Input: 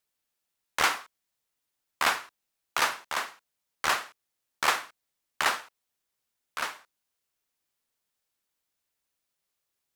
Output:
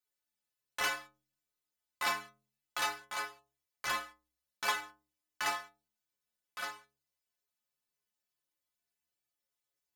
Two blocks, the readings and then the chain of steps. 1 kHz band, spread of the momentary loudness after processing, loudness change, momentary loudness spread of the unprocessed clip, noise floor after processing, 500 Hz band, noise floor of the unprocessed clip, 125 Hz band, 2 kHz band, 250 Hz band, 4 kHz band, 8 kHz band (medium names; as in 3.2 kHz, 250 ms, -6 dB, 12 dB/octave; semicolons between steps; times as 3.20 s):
-8.0 dB, 16 LU, -7.5 dB, 11 LU, under -85 dBFS, -7.5 dB, -83 dBFS, -7.5 dB, -7.0 dB, -7.5 dB, -7.0 dB, -7.5 dB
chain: inharmonic resonator 63 Hz, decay 0.73 s, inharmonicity 0.03; trim +4 dB